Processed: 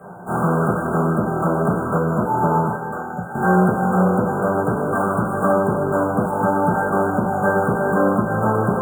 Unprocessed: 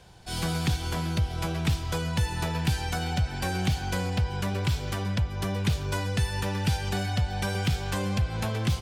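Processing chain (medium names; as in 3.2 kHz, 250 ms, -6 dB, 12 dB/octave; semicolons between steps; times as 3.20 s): 2.67–3.35 s: pre-emphasis filter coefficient 0.8; 1.94–3.22 s: spectral selection erased 1.9–9.6 kHz; 4.95–5.53 s: peaking EQ 4.2 kHz +12 dB 2.8 oct; sample-rate reducer 6.1 kHz, jitter 0%; overload inside the chain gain 30 dB; brick-wall FIR band-stop 1.6–6.8 kHz; two-band feedback delay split 550 Hz, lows 226 ms, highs 155 ms, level -13 dB; reverberation RT60 0.45 s, pre-delay 3 ms, DRR -6.5 dB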